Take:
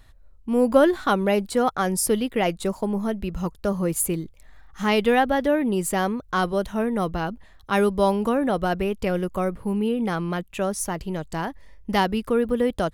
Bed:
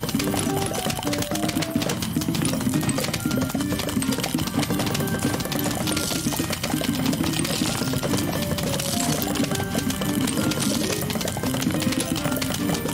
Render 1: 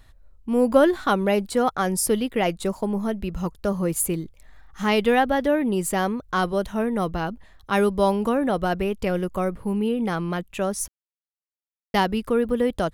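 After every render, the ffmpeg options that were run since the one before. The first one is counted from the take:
-filter_complex "[0:a]asplit=3[a][b][c];[a]atrim=end=10.88,asetpts=PTS-STARTPTS,afade=t=out:st=10.876:d=0.004:c=hsin[d];[b]atrim=start=10.88:end=11.94,asetpts=PTS-STARTPTS,volume=0[e];[c]atrim=start=11.94,asetpts=PTS-STARTPTS,afade=t=in:d=0.004:c=hsin[f];[d][e][f]concat=n=3:v=0:a=1"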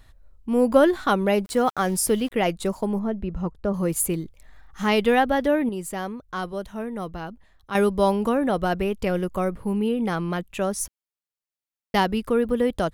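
-filter_complex "[0:a]asplit=3[a][b][c];[a]afade=t=out:st=1.44:d=0.02[d];[b]aeval=exprs='val(0)*gte(abs(val(0)),0.0112)':c=same,afade=t=in:st=1.44:d=0.02,afade=t=out:st=2.31:d=0.02[e];[c]afade=t=in:st=2.31:d=0.02[f];[d][e][f]amix=inputs=3:normalize=0,asettb=1/sr,asplit=3[g][h][i];[g]atrim=end=2.994[j];[h]atrim=start=2.99:end=3.74,asetpts=PTS-STARTPTS,afade=t=in:d=0.004:c=qsin,afade=t=out:st=0.746:d=0.004:c=qsin,lowpass=f=1.1k:p=1[k];[i]atrim=start=3.736[l];[j][k]acrossfade=d=0.004:c1=hsin:c2=qsin[m];[m][l]acrossfade=d=0.004:c1=qsin:c2=hsin,asplit=3[n][o][p];[n]atrim=end=5.692[q];[o]atrim=start=5.688:end=7.752,asetpts=PTS-STARTPTS,volume=-7dB[r];[p]atrim=start=7.748[s];[q][r]acrossfade=d=0.004:c1=hsin:c2=hsin[t];[t][s]acrossfade=d=0.004:c1=hsin:c2=hsin"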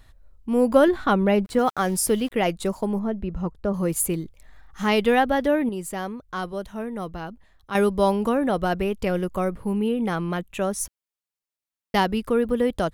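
-filter_complex "[0:a]asettb=1/sr,asplit=3[a][b][c];[a]atrim=end=0.884[d];[b]atrim=start=0.88:end=1.59,asetpts=PTS-STARTPTS,afade=t=in:d=0.004:c=qsin,afade=t=out:st=0.706:d=0.004:c=qsin,bass=f=250:g=5,treble=f=4k:g=-8[e];[c]atrim=start=1.586[f];[d][e]acrossfade=d=0.004:c1=hsin:c2=qsin[g];[g][f]acrossfade=d=0.004:c1=qsin:c2=hsin,asettb=1/sr,asplit=3[h][i][j];[h]atrim=end=9.734[k];[i]atrim=start=9.73:end=10.8,asetpts=PTS-STARTPTS,afade=t=in:d=0.004:c=qsin,afade=t=out:st=1.066:d=0.004:c=qsin,equalizer=f=4.8k:w=5.5:g=-6[l];[j]atrim=start=10.796[m];[k][l]acrossfade=d=0.004:c1=hsin:c2=qsin[n];[n][m]acrossfade=d=0.004:c1=qsin:c2=hsin"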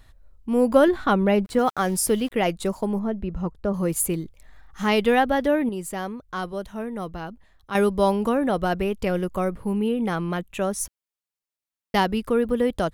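-af anull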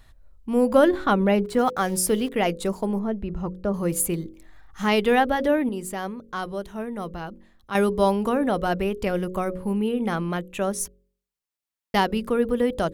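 -af "bandreject=f=45.94:t=h:w=4,bandreject=f=91.88:t=h:w=4,bandreject=f=137.82:t=h:w=4,bandreject=f=183.76:t=h:w=4,bandreject=f=229.7:t=h:w=4,bandreject=f=275.64:t=h:w=4,bandreject=f=321.58:t=h:w=4,bandreject=f=367.52:t=h:w=4,bandreject=f=413.46:t=h:w=4,bandreject=f=459.4:t=h:w=4,bandreject=f=505.34:t=h:w=4,bandreject=f=551.28:t=h:w=4"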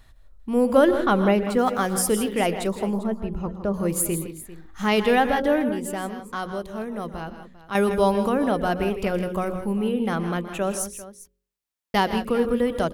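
-af "aecho=1:1:121|160|180|397:0.158|0.282|0.1|0.15"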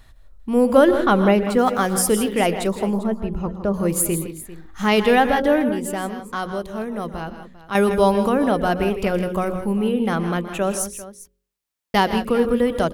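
-af "volume=3.5dB,alimiter=limit=-3dB:level=0:latency=1"

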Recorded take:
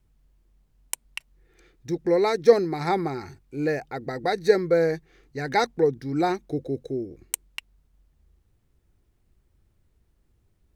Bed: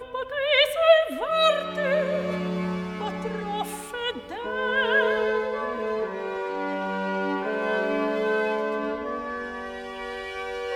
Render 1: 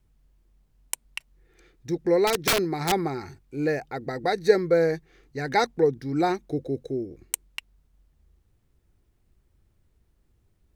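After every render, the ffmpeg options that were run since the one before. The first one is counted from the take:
-filter_complex "[0:a]asettb=1/sr,asplit=3[a][b][c];[a]atrim=end=2.274[d];[b]atrim=start=2.27:end=2.92,asetpts=PTS-STARTPTS,afade=t=in:d=0.004:c=qsin,afade=t=out:st=0.646:d=0.004:c=qsin,aeval=exprs='(mod(5.96*val(0)+1,2)-1)/5.96':c=same[e];[c]atrim=start=2.916[f];[d][e]acrossfade=d=0.004:c1=hsin:c2=qsin[g];[g][f]acrossfade=d=0.004:c1=qsin:c2=hsin"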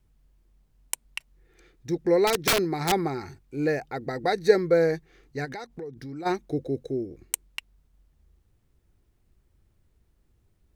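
-filter_complex "[0:a]asplit=3[a][b][c];[a]afade=t=out:st=5.44:d=0.02[d];[b]acompressor=threshold=-35dB:ratio=6:attack=3.2:release=140:knee=1:detection=peak,afade=t=in:st=5.44:d=0.02,afade=t=out:st=6.25:d=0.02[e];[c]afade=t=in:st=6.25:d=0.02[f];[d][e][f]amix=inputs=3:normalize=0"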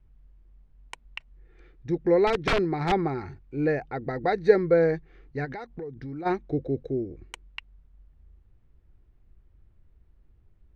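-af "lowpass=2.6k,lowshelf=f=72:g=11"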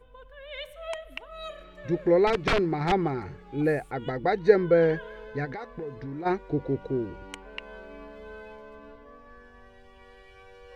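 -filter_complex "[1:a]volume=-19.5dB[a];[0:a][a]amix=inputs=2:normalize=0"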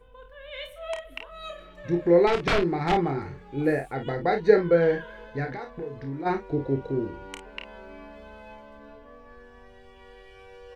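-af "aecho=1:1:29|52:0.473|0.299"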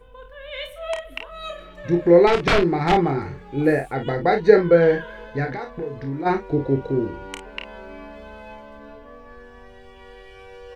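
-af "volume=5.5dB,alimiter=limit=-1dB:level=0:latency=1"

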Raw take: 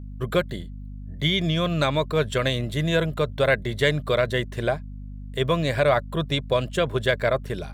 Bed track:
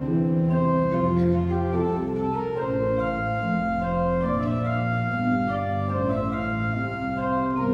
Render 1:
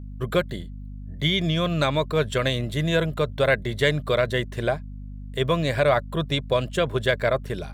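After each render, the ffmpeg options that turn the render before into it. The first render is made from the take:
-af anull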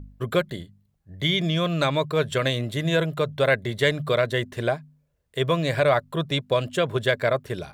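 -af "bandreject=f=50:t=h:w=4,bandreject=f=100:t=h:w=4,bandreject=f=150:t=h:w=4,bandreject=f=200:t=h:w=4,bandreject=f=250:t=h:w=4"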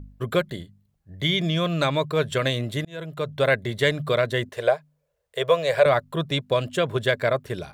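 -filter_complex "[0:a]asettb=1/sr,asplit=3[a][b][c];[a]atrim=end=4.494[d];[b]atrim=start=4.49:end=5.86,asetpts=PTS-STARTPTS,afade=t=in:d=0.004:c=qsin,afade=t=out:st=1.366:d=0.004:c=qsin,lowshelf=f=380:t=q:w=3:g=-9[e];[c]atrim=start=5.856[f];[d][e]acrossfade=d=0.004:c1=hsin:c2=qsin[g];[g][f]acrossfade=d=0.004:c1=qsin:c2=hsin,asplit=2[h][i];[h]atrim=end=2.85,asetpts=PTS-STARTPTS,afade=t=out:st=2.846:d=0.004:c=hsin[j];[i]atrim=start=2.85,asetpts=PTS-STARTPTS,afade=t=in:d=0.57[k];[j][k]concat=n=2:v=0:a=1"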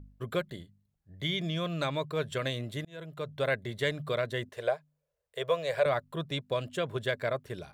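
-af "volume=-9dB"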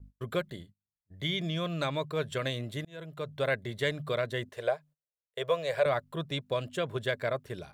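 -af "agate=range=-24dB:threshold=-52dB:ratio=16:detection=peak"

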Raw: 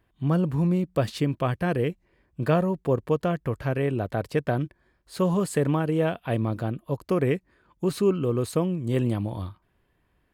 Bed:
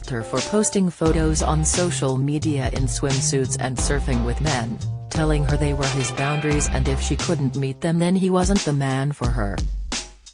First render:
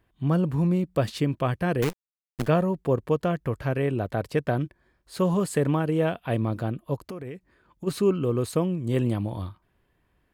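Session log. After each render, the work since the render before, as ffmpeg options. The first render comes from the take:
-filter_complex "[0:a]asettb=1/sr,asplit=3[a][b][c];[a]atrim=end=1.824[d];[b]atrim=start=1.82:end=2.48,asetpts=PTS-STARTPTS,afade=t=in:d=0.004:c=qsin,afade=t=out:st=0.656:d=0.004:c=qsin,acrusher=bits=5:dc=4:mix=0:aa=0.000001[e];[c]atrim=start=2.476[f];[d][e]acrossfade=d=0.004:c1=hsin:c2=qsin[g];[g][f]acrossfade=d=0.004:c1=qsin:c2=hsin,asplit=3[h][i][j];[h]afade=t=out:st=7.07:d=0.02[k];[i]acompressor=threshold=-32dB:ratio=16:attack=3.2:release=140:knee=1:detection=peak,afade=t=in:st=7.07:d=0.02,afade=t=out:st=7.86:d=0.02[l];[j]afade=t=in:st=7.86:d=0.02[m];[k][l][m]amix=inputs=3:normalize=0"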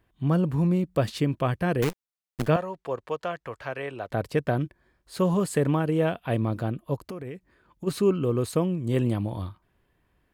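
-filter_complex "[0:a]asettb=1/sr,asplit=3[a][b][c];[a]atrim=end=2.564[d];[b]atrim=start=2.56:end=4.11,asetpts=PTS-STARTPTS,afade=t=in:d=0.004:c=qsin,afade=t=out:st=1.546:d=0.004:c=qsin,acrossover=split=530 7900:gain=0.158 1 0.224[e][f][g];[e][f][g]amix=inputs=3:normalize=0[h];[c]atrim=start=4.106[i];[d][h]acrossfade=d=0.004:c1=hsin:c2=qsin[j];[j][i]acrossfade=d=0.004:c1=qsin:c2=hsin"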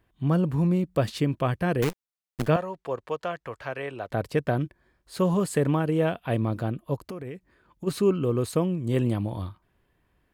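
-af anull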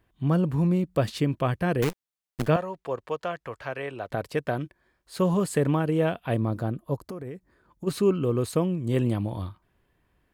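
-filter_complex "[0:a]asettb=1/sr,asplit=3[a][b][c];[a]atrim=end=4.154[d];[b]atrim=start=4.15:end=5.2,asetpts=PTS-STARTPTS,afade=t=in:d=0.004:c=qsin,afade=t=out:st=1.046:d=0.004:c=qsin,lowshelf=f=320:g=-6.5[e];[c]atrim=start=5.196[f];[d][e]acrossfade=d=0.004:c1=hsin:c2=qsin[g];[g][f]acrossfade=d=0.004:c1=qsin:c2=hsin,asettb=1/sr,asplit=3[h][i][j];[h]atrim=end=6.344[k];[i]atrim=start=6.34:end=7.87,asetpts=PTS-STARTPTS,afade=t=in:d=0.004:c=qsin,afade=t=out:st=1.526:d=0.004:c=qsin,equalizer=f=2.7k:w=1.5:g=-7.5[l];[j]atrim=start=7.866[m];[k][l]acrossfade=d=0.004:c1=hsin:c2=qsin[n];[n][m]acrossfade=d=0.004:c1=qsin:c2=hsin"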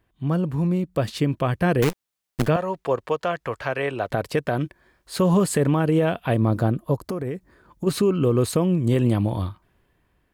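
-af "dynaudnorm=f=430:g=7:m=9.5dB,alimiter=limit=-11.5dB:level=0:latency=1:release=167"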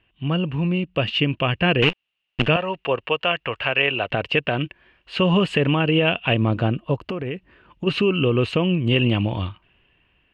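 -af "lowpass=f=2.8k:t=q:w=13"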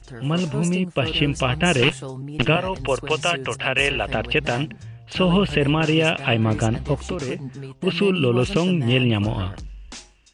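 -filter_complex "[1:a]volume=-11.5dB[a];[0:a][a]amix=inputs=2:normalize=0"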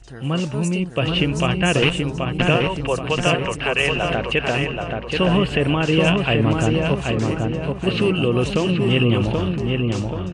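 -filter_complex "[0:a]asplit=2[a][b];[b]adelay=780,lowpass=f=2.2k:p=1,volume=-3dB,asplit=2[c][d];[d]adelay=780,lowpass=f=2.2k:p=1,volume=0.49,asplit=2[e][f];[f]adelay=780,lowpass=f=2.2k:p=1,volume=0.49,asplit=2[g][h];[h]adelay=780,lowpass=f=2.2k:p=1,volume=0.49,asplit=2[i][j];[j]adelay=780,lowpass=f=2.2k:p=1,volume=0.49,asplit=2[k][l];[l]adelay=780,lowpass=f=2.2k:p=1,volume=0.49[m];[a][c][e][g][i][k][m]amix=inputs=7:normalize=0"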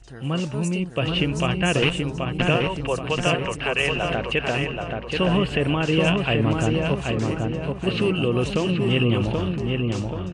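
-af "volume=-3dB"

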